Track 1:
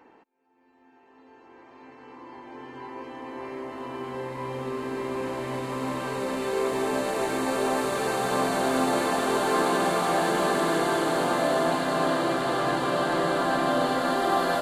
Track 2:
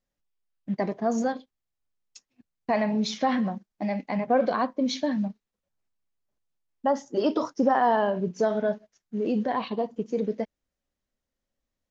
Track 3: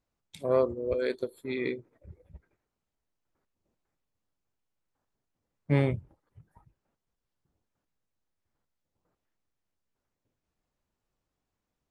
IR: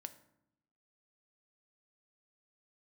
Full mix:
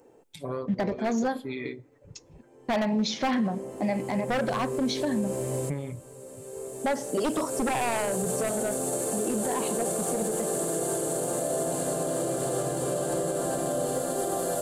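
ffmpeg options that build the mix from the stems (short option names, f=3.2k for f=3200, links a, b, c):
-filter_complex "[0:a]equalizer=f=125:t=o:w=1:g=7,equalizer=f=250:t=o:w=1:g=-6,equalizer=f=500:t=o:w=1:g=8,equalizer=f=1k:t=o:w=1:g=-11,equalizer=f=2k:t=o:w=1:g=-10,equalizer=f=4k:t=o:w=1:g=-11,equalizer=f=8k:t=o:w=1:g=12,crystalizer=i=1:c=0,volume=-0.5dB,asplit=2[a][b];[b]volume=-22dB[c];[1:a]aeval=exprs='0.106*(abs(mod(val(0)/0.106+3,4)-2)-1)':c=same,volume=1.5dB,asplit=2[d][e];[e]volume=-5dB[f];[2:a]aecho=1:1:7:0.88,acompressor=threshold=-30dB:ratio=6,volume=-2.5dB,asplit=3[g][h][i];[h]volume=-4.5dB[j];[i]apad=whole_len=644676[k];[a][k]sidechaincompress=threshold=-54dB:ratio=6:attack=16:release=1460[l];[3:a]atrim=start_sample=2205[m];[c][f][j]amix=inputs=3:normalize=0[n];[n][m]afir=irnorm=-1:irlink=0[o];[l][d][g][o]amix=inputs=4:normalize=0,alimiter=limit=-19.5dB:level=0:latency=1:release=94"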